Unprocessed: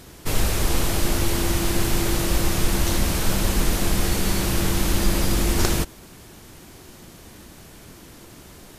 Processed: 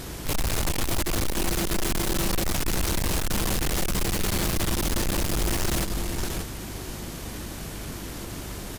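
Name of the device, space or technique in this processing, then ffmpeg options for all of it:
valve amplifier with mains hum: -filter_complex "[0:a]asettb=1/sr,asplit=3[a][b][c];[a]atrim=end=1.284[d];[b]atrim=start=1.28:end=2.43,asetpts=PTS-STARTPTS,afade=t=in:d=0.004:c=qsin,afade=t=out:st=1.146:d=0.004:c=qsin,aecho=1:1:5.3:0.47,atrim=end_sample=50715[e];[c]atrim=start=2.426[f];[d][e]acrossfade=d=0.004:c1=hsin:c2=qsin[g];[g][f]acrossfade=d=0.004:c1=qsin:c2=hsin,aecho=1:1:585:0.2,aeval=exprs='(tanh(39.8*val(0)+0.25)-tanh(0.25))/39.8':c=same,aeval=exprs='val(0)+0.00398*(sin(2*PI*50*n/s)+sin(2*PI*2*50*n/s)/2+sin(2*PI*3*50*n/s)/3+sin(2*PI*4*50*n/s)/4+sin(2*PI*5*50*n/s)/5)':c=same,volume=8.5dB"

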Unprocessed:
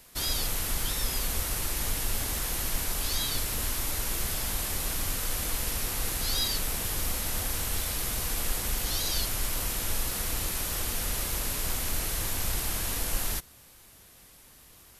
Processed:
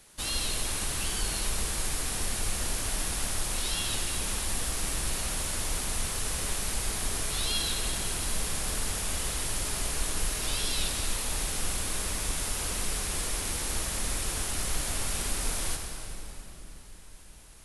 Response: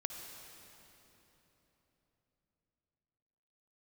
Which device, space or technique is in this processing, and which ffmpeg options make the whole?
slowed and reverbed: -filter_complex "[0:a]asetrate=37485,aresample=44100[a];[1:a]atrim=start_sample=2205[b];[a][b]afir=irnorm=-1:irlink=0"

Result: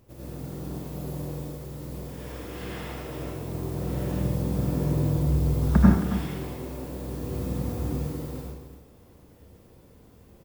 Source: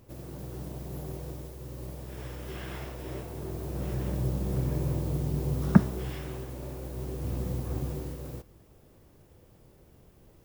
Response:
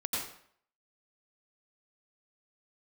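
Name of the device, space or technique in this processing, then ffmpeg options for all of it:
bathroom: -filter_complex "[0:a]asplit=3[a][b][c];[a]afade=t=out:st=5.16:d=0.02[d];[b]asubboost=boost=7:cutoff=60,afade=t=in:st=5.16:d=0.02,afade=t=out:st=5.76:d=0.02[e];[c]afade=t=in:st=5.76:d=0.02[f];[d][e][f]amix=inputs=3:normalize=0[g];[1:a]atrim=start_sample=2205[h];[g][h]afir=irnorm=-1:irlink=0,aecho=1:1:75.8|271.1:0.282|0.282,volume=-1.5dB"

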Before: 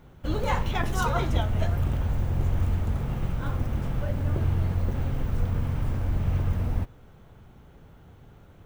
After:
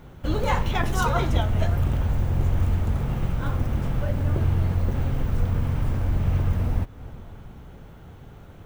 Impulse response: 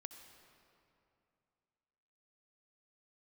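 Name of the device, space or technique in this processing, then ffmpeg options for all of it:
ducked reverb: -filter_complex "[0:a]asplit=3[a][b][c];[1:a]atrim=start_sample=2205[d];[b][d]afir=irnorm=-1:irlink=0[e];[c]apad=whole_len=381564[f];[e][f]sidechaincompress=threshold=-38dB:ratio=8:attack=16:release=193,volume=2dB[g];[a][g]amix=inputs=2:normalize=0,volume=2dB"

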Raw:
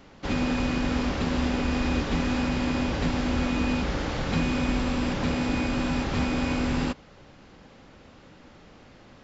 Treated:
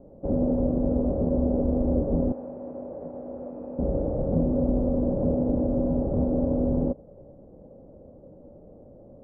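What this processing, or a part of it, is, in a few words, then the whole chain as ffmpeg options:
under water: -filter_complex "[0:a]lowpass=f=600:w=0.5412,lowpass=f=600:w=1.3066,equalizer=f=570:t=o:w=0.51:g=10,asettb=1/sr,asplit=3[a][b][c];[a]atrim=end=2.324[d];[b]atrim=start=2.32:end=3.79,asetpts=PTS-STARTPTS,afade=t=in:d=0.004:c=qsin,afade=t=out:st=1.466:d=0.004:c=qsin,highpass=f=1.4k:p=1[e];[c]atrim=start=3.786[f];[d][e]acrossfade=d=0.004:c1=hsin:c2=qsin[g];[g][f]acrossfade=d=0.004:c1=qsin:c2=hsin,volume=1.5dB"

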